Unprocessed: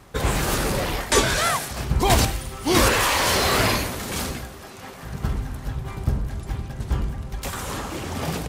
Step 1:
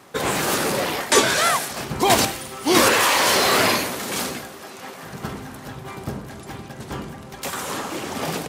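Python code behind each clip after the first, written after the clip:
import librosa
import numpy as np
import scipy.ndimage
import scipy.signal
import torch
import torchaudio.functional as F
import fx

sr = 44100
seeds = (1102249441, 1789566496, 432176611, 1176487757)

y = scipy.signal.sosfilt(scipy.signal.butter(2, 210.0, 'highpass', fs=sr, output='sos'), x)
y = F.gain(torch.from_numpy(y), 3.0).numpy()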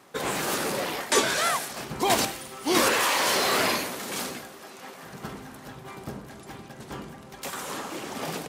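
y = fx.peak_eq(x, sr, hz=87.0, db=-6.5, octaves=1.0)
y = F.gain(torch.from_numpy(y), -6.0).numpy()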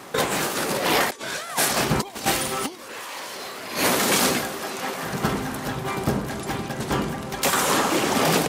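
y = fx.over_compress(x, sr, threshold_db=-32.0, ratio=-0.5)
y = F.gain(torch.from_numpy(y), 9.0).numpy()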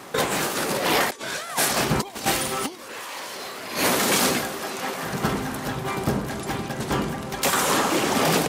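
y = 10.0 ** (-7.5 / 20.0) * np.tanh(x / 10.0 ** (-7.5 / 20.0))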